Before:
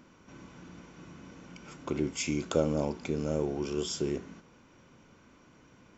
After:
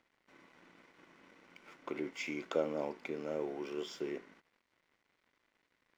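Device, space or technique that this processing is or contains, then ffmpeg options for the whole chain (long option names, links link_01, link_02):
pocket radio on a weak battery: -af "highpass=350,lowpass=3500,aeval=exprs='sgn(val(0))*max(abs(val(0))-0.00106,0)':channel_layout=same,equalizer=frequency=2000:width_type=o:width=0.33:gain=8,volume=-4dB"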